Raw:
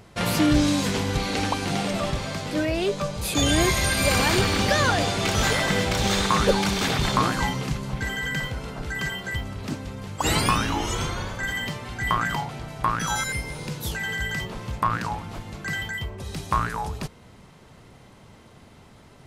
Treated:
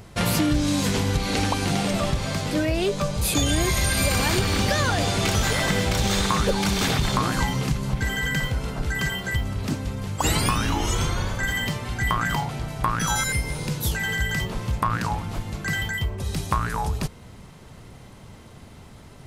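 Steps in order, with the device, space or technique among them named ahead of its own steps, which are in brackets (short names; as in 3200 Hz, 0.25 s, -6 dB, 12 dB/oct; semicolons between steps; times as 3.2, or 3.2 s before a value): ASMR close-microphone chain (low shelf 140 Hz +7 dB; compressor 4:1, threshold -21 dBFS, peak gain reduction 8.5 dB; high shelf 7100 Hz +6 dB); gain +2 dB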